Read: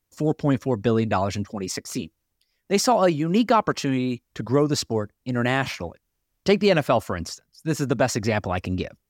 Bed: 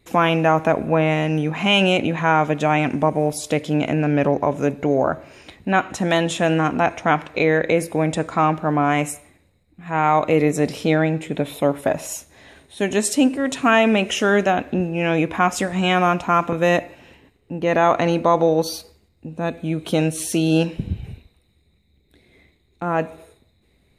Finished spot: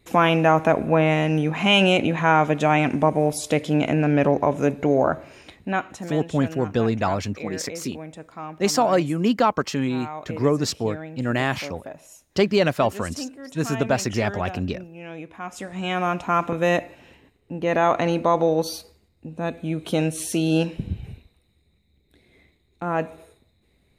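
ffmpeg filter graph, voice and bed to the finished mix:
-filter_complex "[0:a]adelay=5900,volume=-0.5dB[a];[1:a]volume=14dB,afade=t=out:st=5.21:d=0.97:silence=0.141254,afade=t=in:st=15.4:d=1.03:silence=0.188365[b];[a][b]amix=inputs=2:normalize=0"

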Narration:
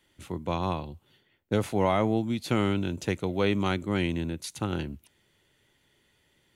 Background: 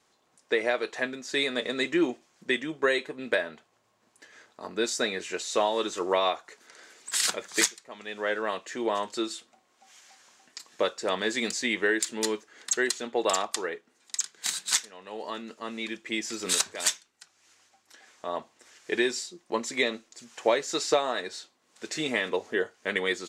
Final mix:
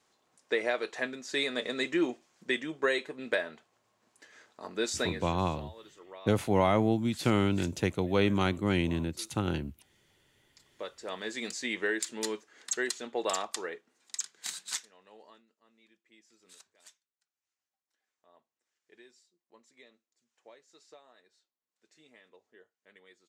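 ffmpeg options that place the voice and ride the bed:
-filter_complex "[0:a]adelay=4750,volume=-0.5dB[a];[1:a]volume=14dB,afade=t=out:st=5.01:d=0.37:silence=0.105925,afade=t=in:st=10.45:d=1.33:silence=0.133352,afade=t=out:st=14.14:d=1.33:silence=0.0530884[b];[a][b]amix=inputs=2:normalize=0"

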